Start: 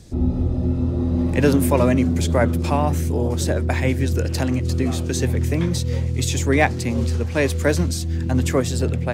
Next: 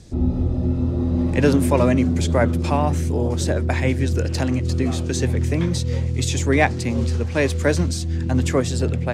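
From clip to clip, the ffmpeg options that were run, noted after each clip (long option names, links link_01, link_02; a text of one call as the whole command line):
ffmpeg -i in.wav -af "lowpass=9500" out.wav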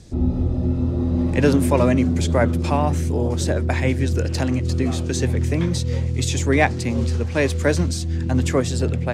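ffmpeg -i in.wav -af anull out.wav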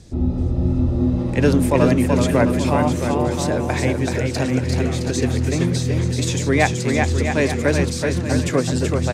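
ffmpeg -i in.wav -af "aecho=1:1:380|665|878.8|1039|1159:0.631|0.398|0.251|0.158|0.1" out.wav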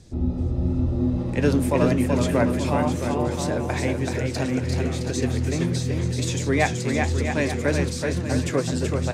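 ffmpeg -i in.wav -af "flanger=delay=7.4:depth=7.1:regen=-73:speed=0.95:shape=triangular" out.wav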